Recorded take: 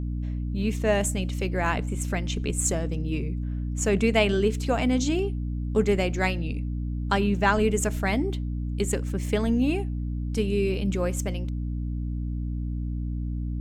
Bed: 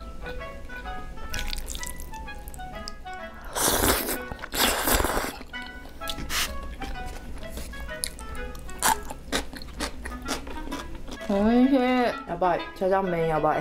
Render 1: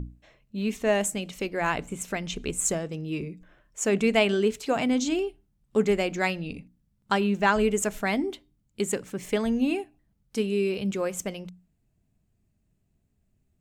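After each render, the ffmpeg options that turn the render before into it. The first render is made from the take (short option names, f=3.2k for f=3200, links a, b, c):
-af "bandreject=f=60:t=h:w=6,bandreject=f=120:t=h:w=6,bandreject=f=180:t=h:w=6,bandreject=f=240:t=h:w=6,bandreject=f=300:t=h:w=6"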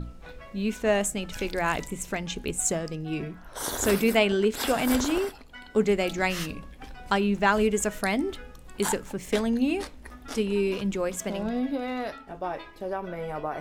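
-filter_complex "[1:a]volume=-9dB[a];[0:a][a]amix=inputs=2:normalize=0"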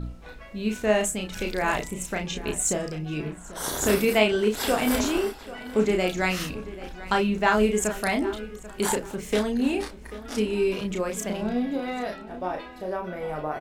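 -filter_complex "[0:a]asplit=2[a][b];[b]adelay=33,volume=-4dB[c];[a][c]amix=inputs=2:normalize=0,asplit=2[d][e];[e]adelay=789,lowpass=f=3.9k:p=1,volume=-16dB,asplit=2[f][g];[g]adelay=789,lowpass=f=3.9k:p=1,volume=0.33,asplit=2[h][i];[i]adelay=789,lowpass=f=3.9k:p=1,volume=0.33[j];[d][f][h][j]amix=inputs=4:normalize=0"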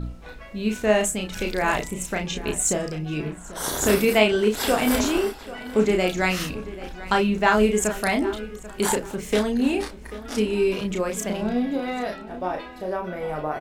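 -af "volume=2.5dB"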